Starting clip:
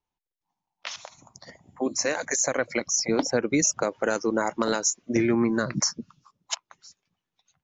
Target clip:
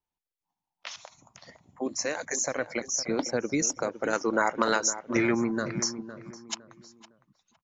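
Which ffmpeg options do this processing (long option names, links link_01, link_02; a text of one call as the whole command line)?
ffmpeg -i in.wav -filter_complex "[0:a]asettb=1/sr,asplit=3[link_01][link_02][link_03];[link_01]atrim=end=4.134[link_04];[link_02]atrim=start=4.13:end=5.35,asetpts=PTS-STARTPTS,afade=type=in:duration=0.004:curve=qsin,afade=type=out:start_time=1.216:duration=0.004:curve=qsin,equalizer=frequency=1600:width=0.48:gain=9[link_05];[link_03]atrim=start=5.346[link_06];[link_04][link_05]acrossfade=duration=0.004:curve1=hsin:curve2=qsin[link_07];[link_07][link_06]acrossfade=duration=0.004:curve1=qsin:curve2=hsin,asplit=2[link_08][link_09];[link_09]adelay=509,lowpass=frequency=1700:poles=1,volume=-12dB,asplit=2[link_10][link_11];[link_11]adelay=509,lowpass=frequency=1700:poles=1,volume=0.32,asplit=2[link_12][link_13];[link_13]adelay=509,lowpass=frequency=1700:poles=1,volume=0.32[link_14];[link_08][link_10][link_12][link_14]amix=inputs=4:normalize=0,volume=-4.5dB" out.wav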